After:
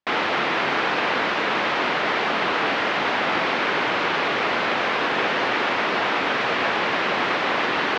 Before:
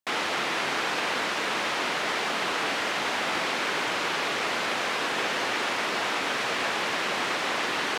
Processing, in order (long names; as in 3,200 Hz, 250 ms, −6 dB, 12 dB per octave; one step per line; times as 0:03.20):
high-frequency loss of the air 220 metres
level +7.5 dB